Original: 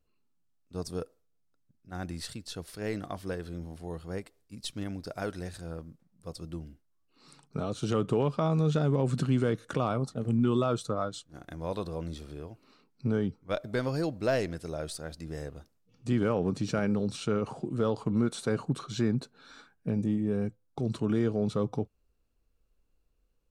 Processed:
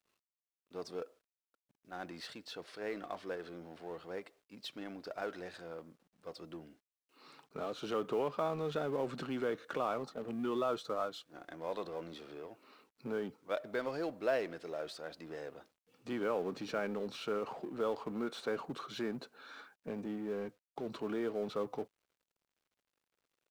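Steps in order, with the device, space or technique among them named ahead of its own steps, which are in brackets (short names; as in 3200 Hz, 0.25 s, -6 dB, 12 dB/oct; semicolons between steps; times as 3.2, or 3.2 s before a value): phone line with mismatched companding (BPF 390–3300 Hz; G.711 law mismatch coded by mu); gain -4.5 dB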